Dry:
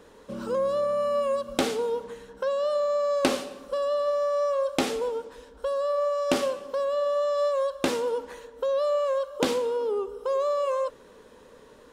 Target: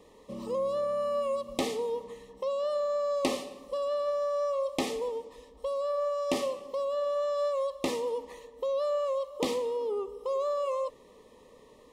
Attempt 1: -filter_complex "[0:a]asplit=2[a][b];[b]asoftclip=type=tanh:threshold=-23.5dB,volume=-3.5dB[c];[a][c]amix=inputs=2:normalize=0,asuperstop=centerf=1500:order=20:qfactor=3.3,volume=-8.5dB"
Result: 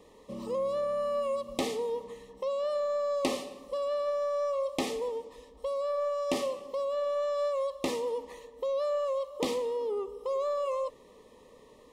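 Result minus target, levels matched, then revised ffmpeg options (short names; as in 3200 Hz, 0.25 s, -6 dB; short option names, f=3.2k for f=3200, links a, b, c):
soft clip: distortion +6 dB
-filter_complex "[0:a]asplit=2[a][b];[b]asoftclip=type=tanh:threshold=-17.5dB,volume=-3.5dB[c];[a][c]amix=inputs=2:normalize=0,asuperstop=centerf=1500:order=20:qfactor=3.3,volume=-8.5dB"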